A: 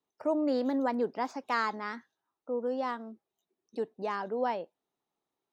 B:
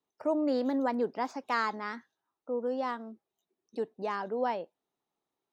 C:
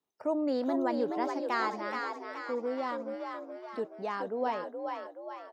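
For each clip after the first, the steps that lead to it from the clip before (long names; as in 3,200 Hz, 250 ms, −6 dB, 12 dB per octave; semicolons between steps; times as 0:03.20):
no processing that can be heard
echo with shifted repeats 424 ms, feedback 52%, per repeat +51 Hz, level −5 dB; level −1.5 dB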